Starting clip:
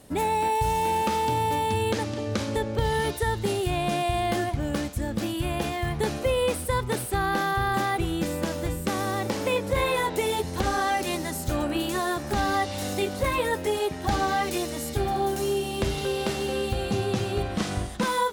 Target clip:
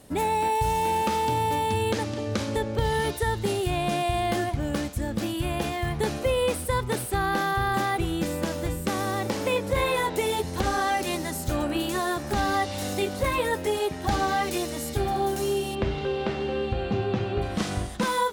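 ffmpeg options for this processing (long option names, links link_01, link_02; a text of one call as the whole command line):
ffmpeg -i in.wav -filter_complex "[0:a]asplit=3[link_01][link_02][link_03];[link_01]afade=type=out:start_time=15.74:duration=0.02[link_04];[link_02]lowpass=2800,afade=type=in:start_time=15.74:duration=0.02,afade=type=out:start_time=17.41:duration=0.02[link_05];[link_03]afade=type=in:start_time=17.41:duration=0.02[link_06];[link_04][link_05][link_06]amix=inputs=3:normalize=0" out.wav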